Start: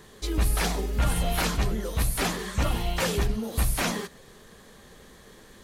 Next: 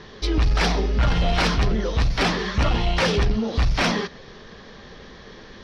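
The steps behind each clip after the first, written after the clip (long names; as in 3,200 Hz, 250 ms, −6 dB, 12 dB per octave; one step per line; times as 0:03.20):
elliptic low-pass filter 5,600 Hz, stop band 40 dB
soft clipping −22 dBFS, distortion −15 dB
level +9 dB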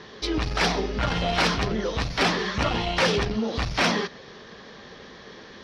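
high-pass filter 180 Hz 6 dB per octave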